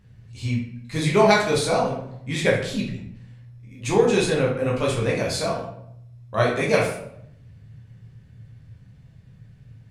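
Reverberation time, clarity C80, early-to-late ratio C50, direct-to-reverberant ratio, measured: 0.75 s, 8.0 dB, 4.0 dB, -4.0 dB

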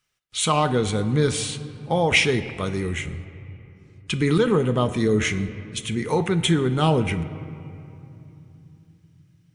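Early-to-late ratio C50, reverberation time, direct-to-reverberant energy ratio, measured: 13.5 dB, 2.9 s, 10.0 dB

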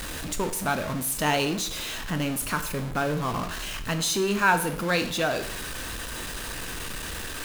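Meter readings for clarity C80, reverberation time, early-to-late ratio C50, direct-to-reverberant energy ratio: 15.0 dB, 0.60 s, 12.0 dB, 7.5 dB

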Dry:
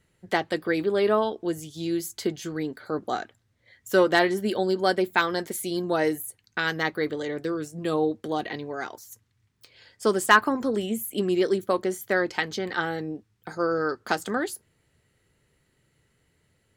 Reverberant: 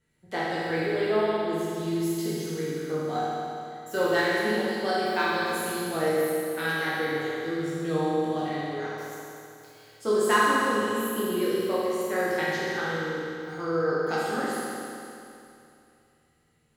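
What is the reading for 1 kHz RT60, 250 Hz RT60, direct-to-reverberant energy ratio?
2.7 s, 2.7 s, -9.0 dB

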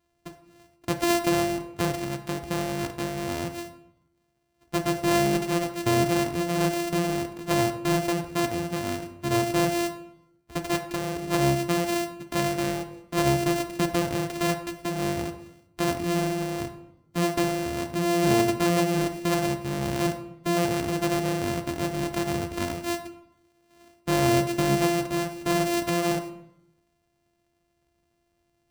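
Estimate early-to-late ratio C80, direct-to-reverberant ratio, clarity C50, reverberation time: 13.5 dB, 7.0 dB, 11.0 dB, 0.85 s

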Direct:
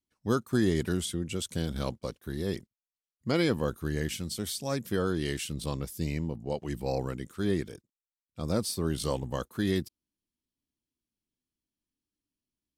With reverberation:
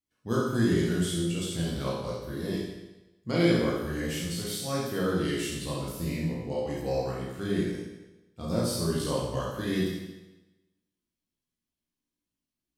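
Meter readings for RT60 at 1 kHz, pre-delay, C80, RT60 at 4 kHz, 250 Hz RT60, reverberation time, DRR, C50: 1.1 s, 17 ms, 3.0 dB, 1.0 s, 1.0 s, 1.1 s, -6.5 dB, -0.5 dB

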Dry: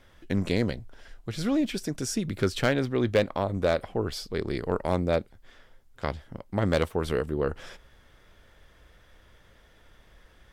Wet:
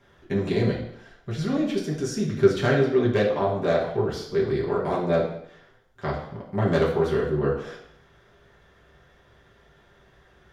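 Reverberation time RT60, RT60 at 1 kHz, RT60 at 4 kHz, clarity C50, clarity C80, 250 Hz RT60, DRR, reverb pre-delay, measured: 0.70 s, 0.70 s, 0.70 s, 5.5 dB, 9.0 dB, 0.75 s, -6.0 dB, 3 ms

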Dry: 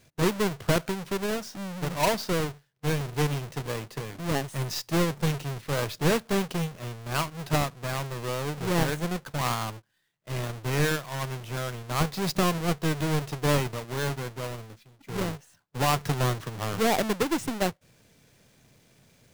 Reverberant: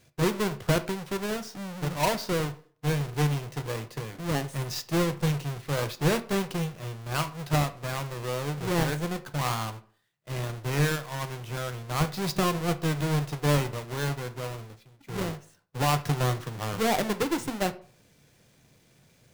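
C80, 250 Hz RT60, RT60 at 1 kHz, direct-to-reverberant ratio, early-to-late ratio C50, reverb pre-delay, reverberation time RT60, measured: 21.0 dB, 0.50 s, 0.50 s, 10.0 dB, 16.5 dB, 3 ms, 0.50 s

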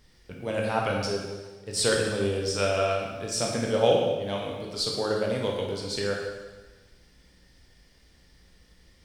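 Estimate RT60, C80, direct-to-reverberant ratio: 1.3 s, 4.0 dB, -1.5 dB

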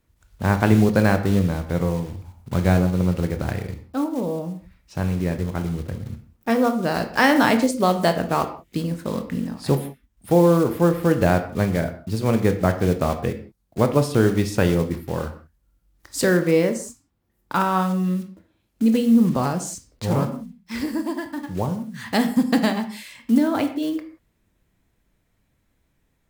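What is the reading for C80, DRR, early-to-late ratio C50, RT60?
14.0 dB, 7.5 dB, 11.0 dB, no single decay rate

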